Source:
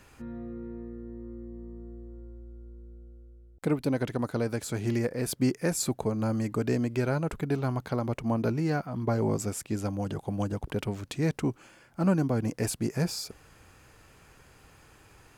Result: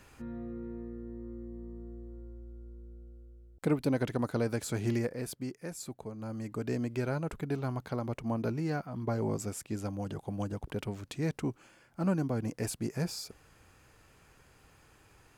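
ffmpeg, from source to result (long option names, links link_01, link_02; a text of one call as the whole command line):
ffmpeg -i in.wav -af "volume=6.5dB,afade=type=out:start_time=4.86:duration=0.58:silence=0.266073,afade=type=in:start_time=6.17:duration=0.67:silence=0.398107" out.wav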